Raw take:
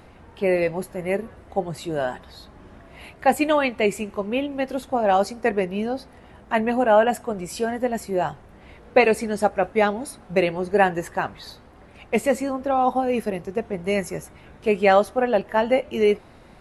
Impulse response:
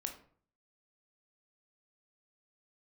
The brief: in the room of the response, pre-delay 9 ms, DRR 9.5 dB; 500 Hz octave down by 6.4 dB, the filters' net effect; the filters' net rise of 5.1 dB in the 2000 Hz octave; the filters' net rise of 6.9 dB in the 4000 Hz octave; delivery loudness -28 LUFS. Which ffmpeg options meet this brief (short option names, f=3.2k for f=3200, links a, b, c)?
-filter_complex "[0:a]equalizer=f=500:t=o:g=-8.5,equalizer=f=2k:t=o:g=4.5,equalizer=f=4k:t=o:g=8,asplit=2[a][b];[1:a]atrim=start_sample=2205,adelay=9[c];[b][c]afir=irnorm=-1:irlink=0,volume=-8.5dB[d];[a][d]amix=inputs=2:normalize=0,volume=-4dB"